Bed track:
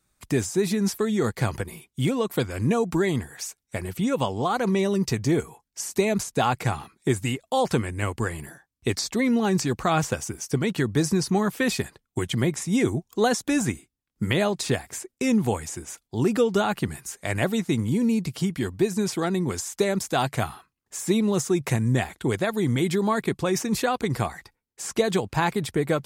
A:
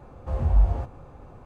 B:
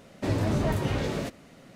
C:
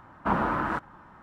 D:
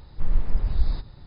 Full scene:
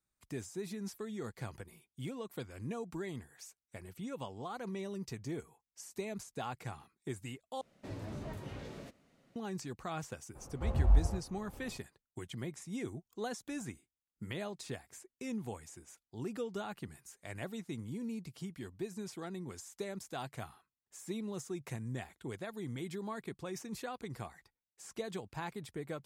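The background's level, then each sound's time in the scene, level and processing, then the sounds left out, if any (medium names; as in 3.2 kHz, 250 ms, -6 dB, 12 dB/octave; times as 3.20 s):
bed track -18 dB
7.61 s: replace with B -17 dB
10.34 s: add A -6.5 dB, fades 0.02 s + transient shaper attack 0 dB, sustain -4 dB
not used: C, D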